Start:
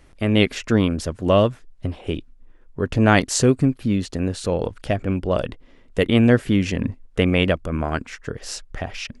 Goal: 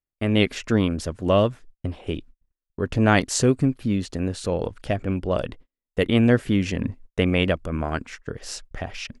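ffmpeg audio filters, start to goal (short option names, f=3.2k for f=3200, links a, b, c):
-af "agate=range=-40dB:threshold=-39dB:ratio=16:detection=peak,volume=-2.5dB"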